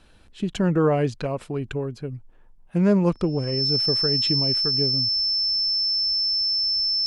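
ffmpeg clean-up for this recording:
ffmpeg -i in.wav -af "bandreject=frequency=5300:width=30" out.wav

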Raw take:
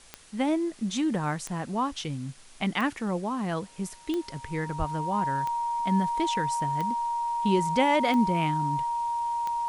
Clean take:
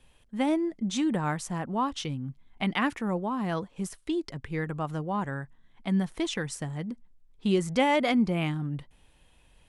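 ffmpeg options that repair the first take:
ffmpeg -i in.wav -filter_complex "[0:a]adeclick=threshold=4,bandreject=frequency=940:width=30,asplit=3[link_01][link_02][link_03];[link_01]afade=type=out:start_time=4.78:duration=0.02[link_04];[link_02]highpass=frequency=140:width=0.5412,highpass=frequency=140:width=1.3066,afade=type=in:start_time=4.78:duration=0.02,afade=type=out:start_time=4.9:duration=0.02[link_05];[link_03]afade=type=in:start_time=4.9:duration=0.02[link_06];[link_04][link_05][link_06]amix=inputs=3:normalize=0,afwtdn=0.0025" out.wav

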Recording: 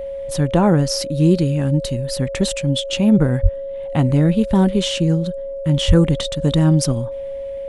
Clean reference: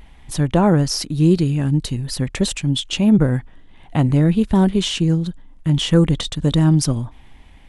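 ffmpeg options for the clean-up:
ffmpeg -i in.wav -filter_complex "[0:a]bandreject=frequency=550:width=30,asplit=3[link_01][link_02][link_03];[link_01]afade=type=out:start_time=3.42:duration=0.02[link_04];[link_02]highpass=frequency=140:width=0.5412,highpass=frequency=140:width=1.3066,afade=type=in:start_time=3.42:duration=0.02,afade=type=out:start_time=3.54:duration=0.02[link_05];[link_03]afade=type=in:start_time=3.54:duration=0.02[link_06];[link_04][link_05][link_06]amix=inputs=3:normalize=0,asplit=3[link_07][link_08][link_09];[link_07]afade=type=out:start_time=5.87:duration=0.02[link_10];[link_08]highpass=frequency=140:width=0.5412,highpass=frequency=140:width=1.3066,afade=type=in:start_time=5.87:duration=0.02,afade=type=out:start_time=5.99:duration=0.02[link_11];[link_09]afade=type=in:start_time=5.99:duration=0.02[link_12];[link_10][link_11][link_12]amix=inputs=3:normalize=0" out.wav

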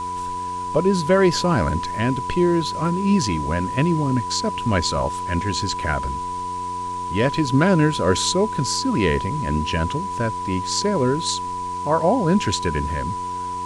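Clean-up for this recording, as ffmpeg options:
ffmpeg -i in.wav -af "bandreject=frequency=90.5:width_type=h:width=4,bandreject=frequency=181:width_type=h:width=4,bandreject=frequency=271.5:width_type=h:width=4,bandreject=frequency=362:width_type=h:width=4,bandreject=frequency=452.5:width_type=h:width=4,bandreject=frequency=990:width=30,afwtdn=0.0071" out.wav

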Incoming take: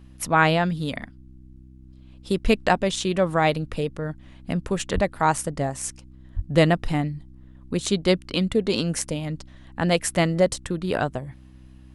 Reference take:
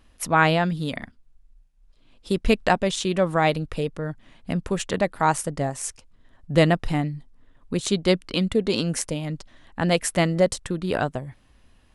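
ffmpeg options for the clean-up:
ffmpeg -i in.wav -filter_complex "[0:a]bandreject=frequency=64.1:width_type=h:width=4,bandreject=frequency=128.2:width_type=h:width=4,bandreject=frequency=192.3:width_type=h:width=4,bandreject=frequency=256.4:width_type=h:width=4,bandreject=frequency=320.5:width_type=h:width=4,asplit=3[link_01][link_02][link_03];[link_01]afade=type=out:start_time=4.94:duration=0.02[link_04];[link_02]highpass=frequency=140:width=0.5412,highpass=frequency=140:width=1.3066,afade=type=in:start_time=4.94:duration=0.02,afade=type=out:start_time=5.06:duration=0.02[link_05];[link_03]afade=type=in:start_time=5.06:duration=0.02[link_06];[link_04][link_05][link_06]amix=inputs=3:normalize=0,asplit=3[link_07][link_08][link_09];[link_07]afade=type=out:start_time=6.35:duration=0.02[link_10];[link_08]highpass=frequency=140:width=0.5412,highpass=frequency=140:width=1.3066,afade=type=in:start_time=6.35:duration=0.02,afade=type=out:start_time=6.47:duration=0.02[link_11];[link_09]afade=type=in:start_time=6.47:duration=0.02[link_12];[link_10][link_11][link_12]amix=inputs=3:normalize=0" out.wav

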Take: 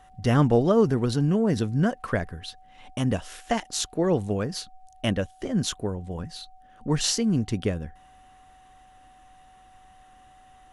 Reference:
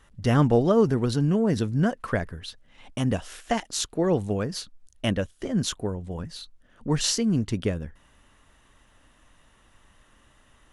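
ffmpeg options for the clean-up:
ffmpeg -i in.wav -af "bandreject=frequency=750:width=30" out.wav

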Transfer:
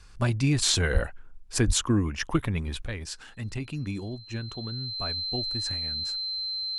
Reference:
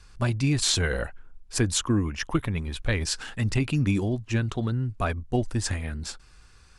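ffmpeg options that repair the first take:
ffmpeg -i in.wav -filter_complex "[0:a]bandreject=frequency=4100:width=30,asplit=3[link_01][link_02][link_03];[link_01]afade=type=out:start_time=0.93:duration=0.02[link_04];[link_02]highpass=frequency=140:width=0.5412,highpass=frequency=140:width=1.3066,afade=type=in:start_time=0.93:duration=0.02,afade=type=out:start_time=1.05:duration=0.02[link_05];[link_03]afade=type=in:start_time=1.05:duration=0.02[link_06];[link_04][link_05][link_06]amix=inputs=3:normalize=0,asplit=3[link_07][link_08][link_09];[link_07]afade=type=out:start_time=1.66:duration=0.02[link_10];[link_08]highpass=frequency=140:width=0.5412,highpass=frequency=140:width=1.3066,afade=type=in:start_time=1.66:duration=0.02,afade=type=out:start_time=1.78:duration=0.02[link_11];[link_09]afade=type=in:start_time=1.78:duration=0.02[link_12];[link_10][link_11][link_12]amix=inputs=3:normalize=0,asetnsamples=nb_out_samples=441:pad=0,asendcmd='2.86 volume volume 9dB',volume=0dB" out.wav

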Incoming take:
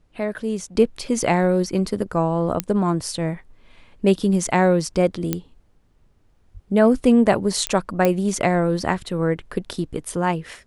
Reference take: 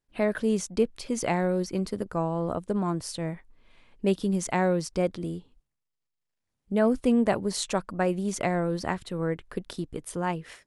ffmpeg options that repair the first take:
ffmpeg -i in.wav -filter_complex "[0:a]adeclick=threshold=4,asplit=3[link_01][link_02][link_03];[link_01]afade=type=out:start_time=6.53:duration=0.02[link_04];[link_02]highpass=frequency=140:width=0.5412,highpass=frequency=140:width=1.3066,afade=type=in:start_time=6.53:duration=0.02,afade=type=out:start_time=6.65:duration=0.02[link_05];[link_03]afade=type=in:start_time=6.65:duration=0.02[link_06];[link_04][link_05][link_06]amix=inputs=3:normalize=0,agate=range=-21dB:threshold=-47dB,asetnsamples=nb_out_samples=441:pad=0,asendcmd='0.75 volume volume -7.5dB',volume=0dB" out.wav

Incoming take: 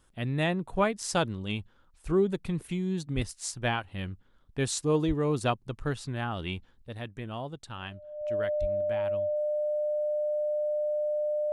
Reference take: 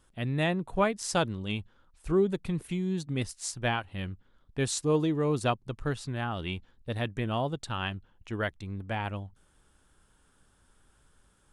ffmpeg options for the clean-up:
ffmpeg -i in.wav -filter_complex "[0:a]bandreject=frequency=600:width=30,asplit=3[link_01][link_02][link_03];[link_01]afade=type=out:start_time=3.15:duration=0.02[link_04];[link_02]highpass=frequency=140:width=0.5412,highpass=frequency=140:width=1.3066,afade=type=in:start_time=3.15:duration=0.02,afade=type=out:start_time=3.27:duration=0.02[link_05];[link_03]afade=type=in:start_time=3.27:duration=0.02[link_06];[link_04][link_05][link_06]amix=inputs=3:normalize=0,asplit=3[link_07][link_08][link_09];[link_07]afade=type=out:start_time=5.07:duration=0.02[link_10];[link_08]highpass=frequency=140:width=0.5412,highpass=frequency=140:width=1.3066,afade=type=in:start_time=5.07:duration=0.02,afade=type=out:start_time=5.19:duration=0.02[link_11];[link_09]afade=type=in:start_time=5.19:duration=0.02[link_12];[link_10][link_11][link_12]amix=inputs=3:normalize=0,asplit=3[link_13][link_14][link_15];[link_13]afade=type=out:start_time=8.6:duration=0.02[link_16];[link_14]highpass=frequency=140:width=0.5412,highpass=frequency=140:width=1.3066,afade=type=in:start_time=8.6:duration=0.02,afade=type=out:start_time=8.72:duration=0.02[link_17];[link_15]afade=type=in:start_time=8.72:duration=0.02[link_18];[link_16][link_17][link_18]amix=inputs=3:normalize=0,asetnsamples=nb_out_samples=441:pad=0,asendcmd='6.87 volume volume 7dB',volume=0dB" out.wav

